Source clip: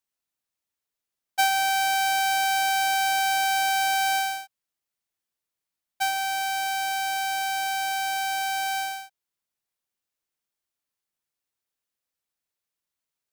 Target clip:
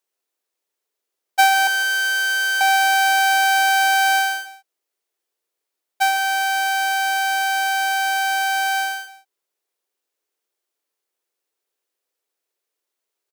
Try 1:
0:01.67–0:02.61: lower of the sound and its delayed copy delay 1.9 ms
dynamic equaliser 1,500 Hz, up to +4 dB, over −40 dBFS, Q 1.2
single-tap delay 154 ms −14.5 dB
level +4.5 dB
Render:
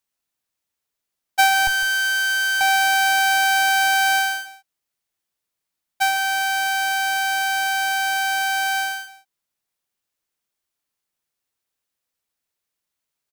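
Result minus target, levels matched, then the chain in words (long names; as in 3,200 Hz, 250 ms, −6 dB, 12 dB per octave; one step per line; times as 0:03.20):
500 Hz band −3.5 dB
0:01.67–0:02.61: lower of the sound and its delayed copy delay 1.9 ms
dynamic equaliser 1,500 Hz, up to +4 dB, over −40 dBFS, Q 1.2
high-pass with resonance 400 Hz, resonance Q 2.8
single-tap delay 154 ms −14.5 dB
level +4.5 dB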